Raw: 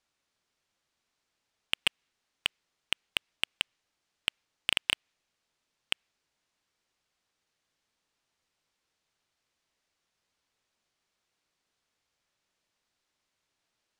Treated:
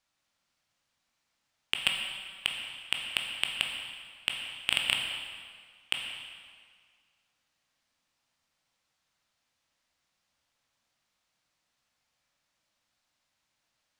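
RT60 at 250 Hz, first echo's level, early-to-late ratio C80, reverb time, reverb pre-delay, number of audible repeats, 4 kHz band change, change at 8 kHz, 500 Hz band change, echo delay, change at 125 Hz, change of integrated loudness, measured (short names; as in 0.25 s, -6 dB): 1.8 s, none, 4.5 dB, 1.9 s, 14 ms, none, +2.0 dB, +2.0 dB, 0.0 dB, none, +3.0 dB, +1.0 dB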